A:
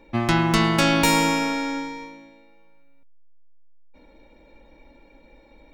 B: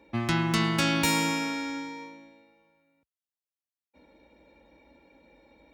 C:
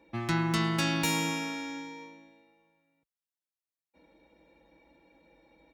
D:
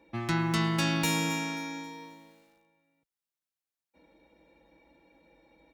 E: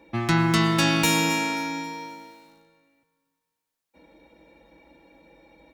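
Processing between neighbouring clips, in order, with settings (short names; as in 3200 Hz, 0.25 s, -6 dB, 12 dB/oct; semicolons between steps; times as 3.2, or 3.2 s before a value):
HPF 57 Hz 24 dB/oct; dynamic EQ 630 Hz, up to -6 dB, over -35 dBFS, Q 0.83; gain -4.5 dB
comb 6.1 ms, depth 42%; gain -4.5 dB
lo-fi delay 0.267 s, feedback 35%, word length 9-bit, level -14.5 dB
digital reverb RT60 2 s, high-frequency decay 0.85×, pre-delay 70 ms, DRR 11.5 dB; gain +7.5 dB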